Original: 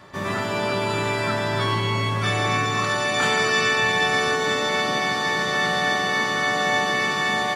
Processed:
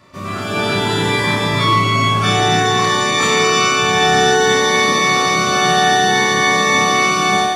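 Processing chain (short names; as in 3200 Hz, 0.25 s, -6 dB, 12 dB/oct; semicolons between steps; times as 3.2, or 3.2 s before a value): AGC gain up to 11 dB; on a send: flutter echo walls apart 5.1 m, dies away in 0.44 s; on the sum: cascading phaser rising 0.58 Hz; gain -1 dB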